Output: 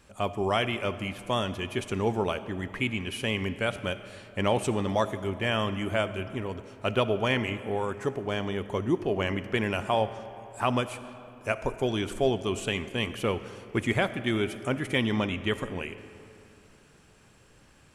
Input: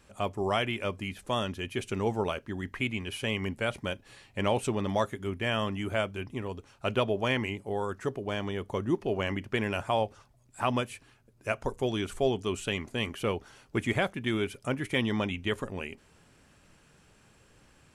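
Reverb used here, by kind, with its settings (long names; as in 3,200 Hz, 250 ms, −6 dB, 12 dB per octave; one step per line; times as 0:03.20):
comb and all-pass reverb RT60 2.9 s, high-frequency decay 0.6×, pre-delay 20 ms, DRR 12.5 dB
level +2 dB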